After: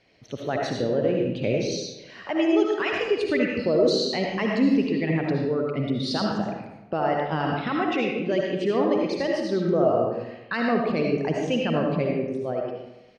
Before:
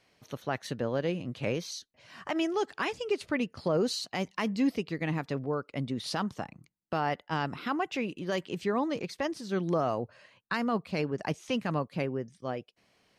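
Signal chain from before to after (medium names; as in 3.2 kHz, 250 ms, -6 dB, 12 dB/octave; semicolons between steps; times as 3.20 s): resonances exaggerated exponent 1.5; low-pass 6.5 kHz 12 dB/octave; peaking EQ 1.1 kHz -6.5 dB 0.89 oct; echo from a far wall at 67 m, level -28 dB; algorithmic reverb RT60 0.94 s, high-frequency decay 0.75×, pre-delay 35 ms, DRR -1 dB; trim +5.5 dB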